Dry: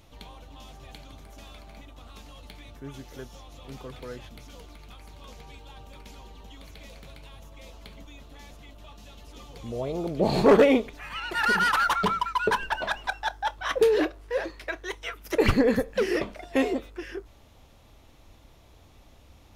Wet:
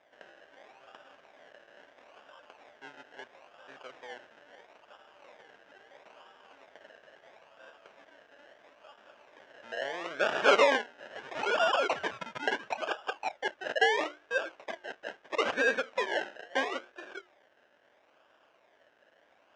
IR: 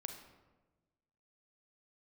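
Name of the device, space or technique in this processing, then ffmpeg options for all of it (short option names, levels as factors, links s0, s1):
circuit-bent sampling toy: -af "bandreject=f=60:t=h:w=6,bandreject=f=120:t=h:w=6,bandreject=f=180:t=h:w=6,bandreject=f=240:t=h:w=6,bandreject=f=300:t=h:w=6,bandreject=f=360:t=h:w=6,acrusher=samples=30:mix=1:aa=0.000001:lfo=1:lforange=18:lforate=0.75,highpass=530,equalizer=f=600:t=q:w=4:g=6,equalizer=f=1600:t=q:w=4:g=10,equalizer=f=2900:t=q:w=4:g=5,equalizer=f=4400:t=q:w=4:g=-8,lowpass=f=5500:w=0.5412,lowpass=f=5500:w=1.3066,volume=0.562"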